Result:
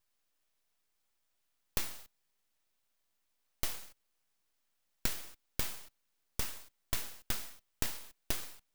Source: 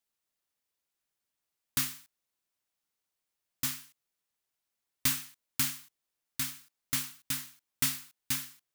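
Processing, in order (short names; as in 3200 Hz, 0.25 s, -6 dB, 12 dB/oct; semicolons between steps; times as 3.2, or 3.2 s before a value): bell 12000 Hz -10 dB 0.88 oct; compressor 6:1, threshold -40 dBFS, peak gain reduction 14 dB; flange 1.4 Hz, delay 0.9 ms, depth 2.9 ms, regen +47%; frequency shift -90 Hz; full-wave rectifier; gain +14 dB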